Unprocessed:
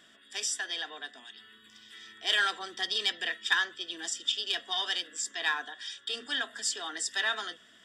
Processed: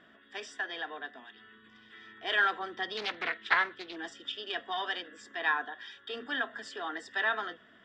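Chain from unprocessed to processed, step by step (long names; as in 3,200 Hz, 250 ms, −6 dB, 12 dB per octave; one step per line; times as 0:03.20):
low-pass filter 1,700 Hz 12 dB per octave
0:02.97–0:03.96: highs frequency-modulated by the lows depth 0.38 ms
level +4 dB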